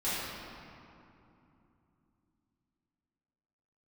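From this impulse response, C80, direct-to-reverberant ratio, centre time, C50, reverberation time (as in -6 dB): -1.5 dB, -14.0 dB, 0.16 s, -4.0 dB, 2.9 s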